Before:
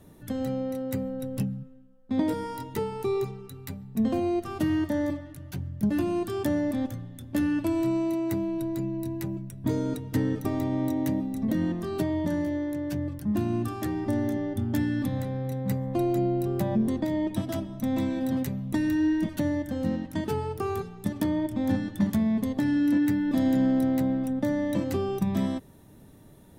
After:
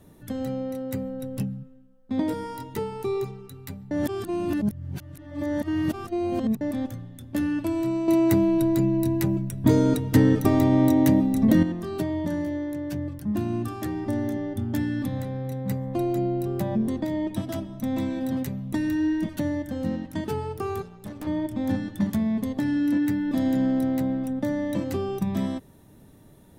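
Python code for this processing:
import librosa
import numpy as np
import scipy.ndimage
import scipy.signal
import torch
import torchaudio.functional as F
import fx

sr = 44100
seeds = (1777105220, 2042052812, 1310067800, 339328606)

y = fx.tube_stage(x, sr, drive_db=32.0, bias=0.6, at=(20.82, 21.27))
y = fx.edit(y, sr, fx.reverse_span(start_s=3.91, length_s=2.7),
    fx.clip_gain(start_s=8.08, length_s=3.55, db=8.5), tone=tone)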